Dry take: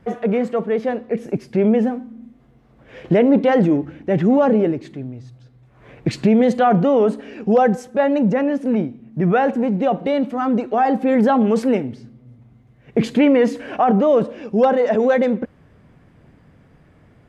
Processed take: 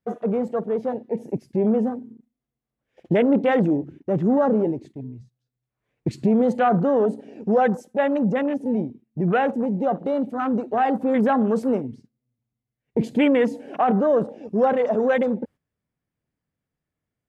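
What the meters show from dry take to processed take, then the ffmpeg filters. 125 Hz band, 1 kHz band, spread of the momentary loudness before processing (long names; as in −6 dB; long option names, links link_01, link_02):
−4.5 dB, −3.5 dB, 10 LU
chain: -af "agate=range=-13dB:threshold=-37dB:ratio=16:detection=peak,crystalizer=i=3.5:c=0,afwtdn=0.0501,volume=-4.5dB"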